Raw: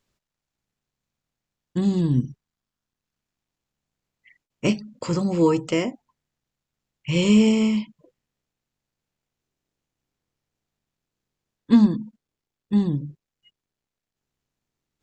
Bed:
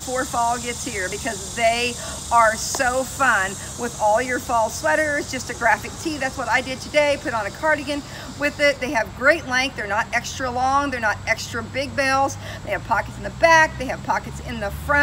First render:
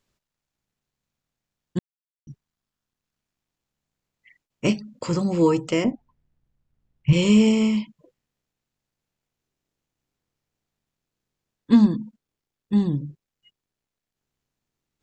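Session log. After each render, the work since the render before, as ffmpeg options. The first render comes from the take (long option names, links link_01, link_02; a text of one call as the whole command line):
ffmpeg -i in.wav -filter_complex "[0:a]asettb=1/sr,asplit=3[link_01][link_02][link_03];[link_01]atrim=end=5.844[link_04];[link_02]atrim=start=5.84:end=7.13,asetpts=PTS-STARTPTS,afade=type=in:duration=0.004:curve=qsin,afade=type=out:start_time=1.286:duration=0.004:curve=qsin,aemphasis=mode=reproduction:type=riaa[link_05];[link_03]atrim=start=7.126[link_06];[link_04][link_05]acrossfade=duration=0.004:curve1=hsin:curve2=qsin[link_07];[link_07][link_06]acrossfade=duration=0.004:curve1=qsin:curve2=hsin,asplit=3[link_08][link_09][link_10];[link_08]atrim=end=1.79,asetpts=PTS-STARTPTS,afade=type=out:start_time=1.786:duration=0.004:curve=hsin[link_11];[link_09]atrim=start=1.79:end=2.27,asetpts=PTS-STARTPTS,volume=0[link_12];[link_10]atrim=start=2.27,asetpts=PTS-STARTPTS,afade=type=in:duration=0.004:curve=hsin[link_13];[link_11][link_12][link_13]concat=n=3:v=0:a=1" out.wav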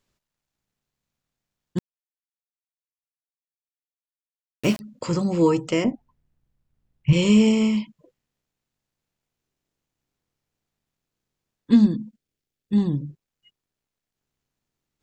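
ffmpeg -i in.wav -filter_complex "[0:a]asettb=1/sr,asplit=3[link_01][link_02][link_03];[link_01]atrim=end=1.784[link_04];[link_02]atrim=start=1.78:end=4.8,asetpts=PTS-STARTPTS,afade=type=in:duration=0.004:curve=qsin,afade=type=out:start_time=3.016:duration=0.004:curve=qsin,aeval=exprs='val(0)*gte(abs(val(0)),0.0355)':channel_layout=same[link_05];[link_03]atrim=start=4.796[link_06];[link_04][link_05]acrossfade=duration=0.004:curve1=hsin:curve2=qsin[link_07];[link_07][link_06]acrossfade=duration=0.004:curve1=qsin:curve2=hsin,asettb=1/sr,asplit=3[link_08][link_09][link_10];[link_08]atrim=end=11.714[link_11];[link_09]atrim=start=11.71:end=12.78,asetpts=PTS-STARTPTS,afade=type=in:duration=0.004:curve=qsin,afade=type=out:start_time=1.066:duration=0.004:curve=qsin,equalizer=frequency=990:width=1.6:gain=-10[link_12];[link_10]atrim=start=12.776[link_13];[link_11][link_12]acrossfade=duration=0.004:curve1=hsin:curve2=qsin[link_14];[link_14][link_13]acrossfade=duration=0.004:curve1=qsin:curve2=hsin" out.wav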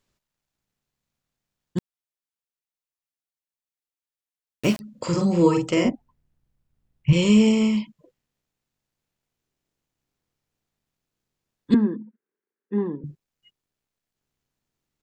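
ffmpeg -i in.wav -filter_complex "[0:a]asplit=3[link_01][link_02][link_03];[link_01]afade=type=out:start_time=4.95:duration=0.02[link_04];[link_02]asplit=2[link_05][link_06];[link_06]adelay=46,volume=-4dB[link_07];[link_05][link_07]amix=inputs=2:normalize=0,afade=type=in:start_time=4.95:duration=0.02,afade=type=out:start_time=5.89:duration=0.02[link_08];[link_03]afade=type=in:start_time=5.89:duration=0.02[link_09];[link_04][link_08][link_09]amix=inputs=3:normalize=0,asettb=1/sr,asplit=3[link_10][link_11][link_12];[link_10]atrim=end=11.744[link_13];[link_11]atrim=start=11.74:end=13.04,asetpts=PTS-STARTPTS,afade=type=in:duration=0.004:curve=qsin,afade=type=out:start_time=1.296:duration=0.004:curve=qsin,highpass=frequency=230:width=0.5412,highpass=frequency=230:width=1.3066,equalizer=frequency=280:width_type=q:width=4:gain=-5,equalizer=frequency=410:width_type=q:width=4:gain=9,equalizer=frequency=670:width_type=q:width=4:gain=-8,equalizer=frequency=980:width_type=q:width=4:gain=5,equalizer=frequency=1600:width_type=q:width=4:gain=5,lowpass=frequency=2000:width=0.5412,lowpass=frequency=2000:width=1.3066[link_14];[link_12]atrim=start=13.036[link_15];[link_13][link_14]acrossfade=duration=0.004:curve1=hsin:curve2=qsin[link_16];[link_16][link_15]acrossfade=duration=0.004:curve1=qsin:curve2=hsin" out.wav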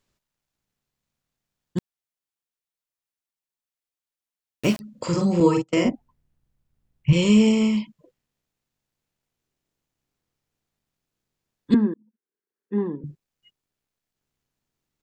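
ffmpeg -i in.wav -filter_complex "[0:a]asettb=1/sr,asplit=3[link_01][link_02][link_03];[link_01]atrim=end=5.404[link_04];[link_02]atrim=start=5.4:end=5.89,asetpts=PTS-STARTPTS,afade=type=in:duration=0.004:curve=qsin,afade=type=out:start_time=0.486:duration=0.004:curve=qsin,agate=range=-30dB:threshold=-24dB:ratio=16:release=100:detection=peak[link_05];[link_03]atrim=start=5.886[link_06];[link_04][link_05]acrossfade=duration=0.004:curve1=hsin:curve2=qsin[link_07];[link_07][link_06]acrossfade=duration=0.004:curve1=qsin:curve2=hsin,asplit=2[link_08][link_09];[link_08]atrim=end=11.94,asetpts=PTS-STARTPTS,afade=type=out:start_time=11.936:duration=0.004:curve=hsin[link_10];[link_09]atrim=start=11.94,asetpts=PTS-STARTPTS,afade=type=in:duration=0.81[link_11];[link_10][link_11]concat=n=2:v=0:a=1" out.wav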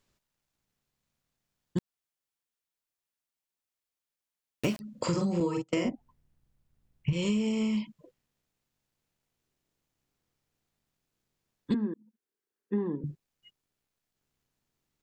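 ffmpeg -i in.wav -af "acompressor=threshold=-25dB:ratio=16" out.wav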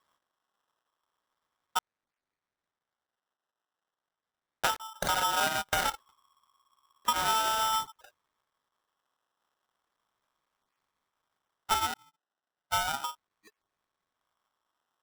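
ffmpeg -i in.wav -af "acrusher=samples=29:mix=1:aa=0.000001:lfo=1:lforange=17.4:lforate=0.35,aeval=exprs='val(0)*sgn(sin(2*PI*1100*n/s))':channel_layout=same" out.wav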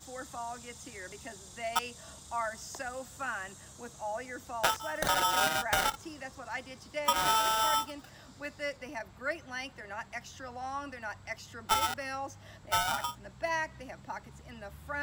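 ffmpeg -i in.wav -i bed.wav -filter_complex "[1:a]volume=-19dB[link_01];[0:a][link_01]amix=inputs=2:normalize=0" out.wav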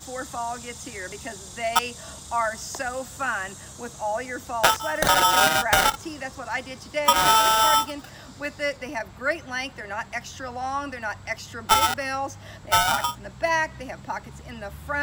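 ffmpeg -i in.wav -af "volume=9.5dB" out.wav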